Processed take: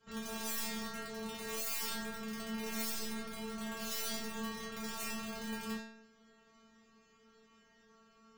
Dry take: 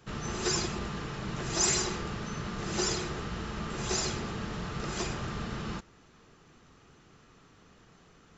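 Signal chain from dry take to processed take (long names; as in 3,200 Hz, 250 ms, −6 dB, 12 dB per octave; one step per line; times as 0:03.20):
harmonic generator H 5 −10 dB, 7 −18 dB, 8 −29 dB, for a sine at −14.5 dBFS
wrap-around overflow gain 23 dB
stiff-string resonator 220 Hz, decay 0.84 s, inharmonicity 0.002
level +7 dB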